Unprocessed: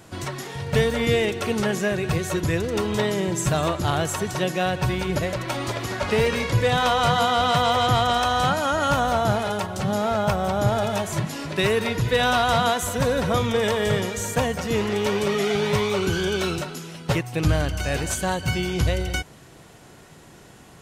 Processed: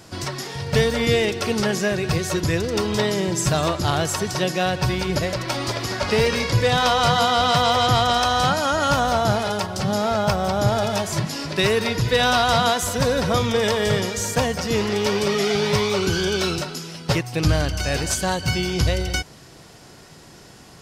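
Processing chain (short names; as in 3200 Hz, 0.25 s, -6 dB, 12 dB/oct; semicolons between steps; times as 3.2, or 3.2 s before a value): bell 5000 Hz +9.5 dB 0.51 oct; gain +1.5 dB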